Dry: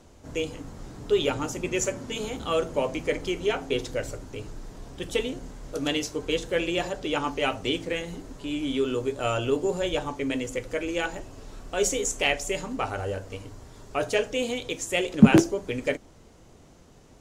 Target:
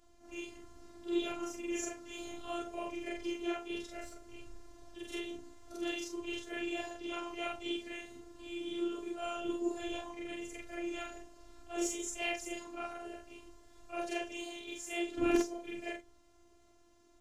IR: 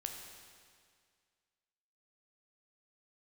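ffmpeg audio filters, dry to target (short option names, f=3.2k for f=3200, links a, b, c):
-af "afftfilt=real='re':imag='-im':win_size=4096:overlap=0.75,flanger=delay=6.6:depth=9.1:regen=38:speed=0.64:shape=sinusoidal,afftfilt=real='hypot(re,im)*cos(PI*b)':imag='0':win_size=512:overlap=0.75"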